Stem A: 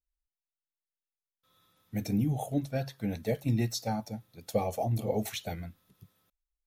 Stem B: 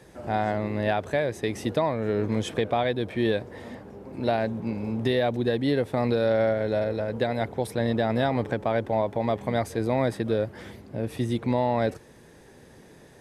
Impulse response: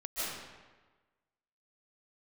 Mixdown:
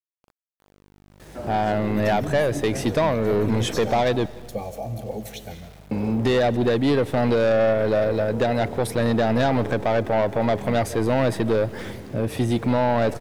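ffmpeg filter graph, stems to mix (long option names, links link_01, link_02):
-filter_complex "[0:a]aeval=exprs='val(0)+0.00794*(sin(2*PI*50*n/s)+sin(2*PI*2*50*n/s)/2+sin(2*PI*3*50*n/s)/3+sin(2*PI*4*50*n/s)/4+sin(2*PI*5*50*n/s)/5)':channel_layout=same,volume=-9.5dB,asplit=2[link_01][link_02];[link_02]volume=-12.5dB[link_03];[1:a]asoftclip=type=tanh:threshold=-22.5dB,adelay=1200,volume=0.5dB,asplit=3[link_04][link_05][link_06];[link_04]atrim=end=4.26,asetpts=PTS-STARTPTS,afade=type=out:start_time=4.256:duration=0.004:curve=hsin[link_07];[link_05]atrim=start=4.26:end=5.91,asetpts=PTS-STARTPTS,volume=0[link_08];[link_06]atrim=start=5.91,asetpts=PTS-STARTPTS,afade=type=in:duration=0.004:curve=hsin[link_09];[link_07][link_08][link_09]concat=n=3:v=0:a=1,asplit=2[link_10][link_11];[link_11]volume=-23dB[link_12];[2:a]atrim=start_sample=2205[link_13];[link_03][link_12]amix=inputs=2:normalize=0[link_14];[link_14][link_13]afir=irnorm=-1:irlink=0[link_15];[link_01][link_10][link_15]amix=inputs=3:normalize=0,dynaudnorm=framelen=330:gausssize=7:maxgain=7dB,aeval=exprs='val(0)*gte(abs(val(0)),0.00562)':channel_layout=same"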